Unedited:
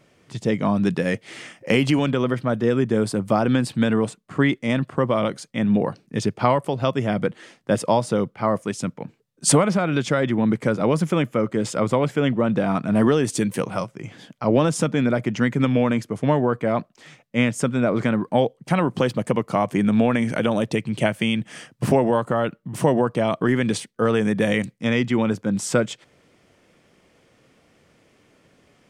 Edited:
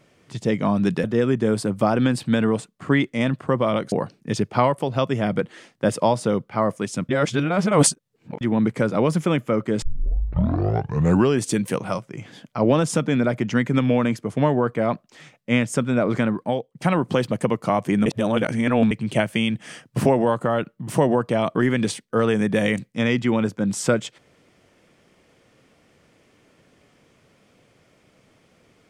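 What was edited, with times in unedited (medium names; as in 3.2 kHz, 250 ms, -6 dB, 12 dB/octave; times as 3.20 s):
1.04–2.53 s: delete
5.41–5.78 s: delete
8.95–10.27 s: reverse
11.68 s: tape start 1.60 s
18.11–18.61 s: fade out, to -13.5 dB
19.92–20.77 s: reverse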